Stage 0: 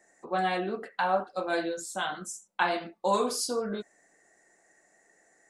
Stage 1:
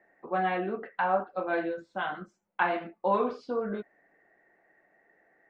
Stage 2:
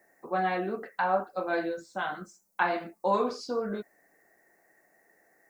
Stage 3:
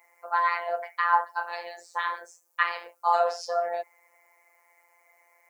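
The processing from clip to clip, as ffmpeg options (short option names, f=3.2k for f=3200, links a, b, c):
-af "lowpass=f=2.6k:w=0.5412,lowpass=f=2.6k:w=1.3066"
-af "aexciter=amount=10:drive=4.6:freq=4.6k"
-af "afreqshift=260,afftfilt=real='hypot(re,im)*cos(PI*b)':imag='0':win_size=1024:overlap=0.75,volume=6.5dB"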